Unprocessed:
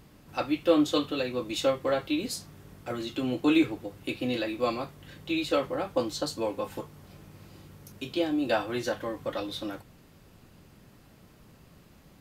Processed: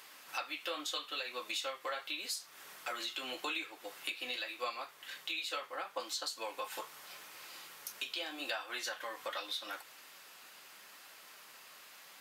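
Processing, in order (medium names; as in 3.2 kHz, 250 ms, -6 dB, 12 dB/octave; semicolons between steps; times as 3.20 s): high-pass 1.2 kHz 12 dB/octave; compression 5:1, threshold -47 dBFS, peak gain reduction 16.5 dB; flange 0.81 Hz, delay 1.8 ms, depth 7.8 ms, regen -60%; 4.36–6.00 s: three bands expanded up and down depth 40%; trim +13.5 dB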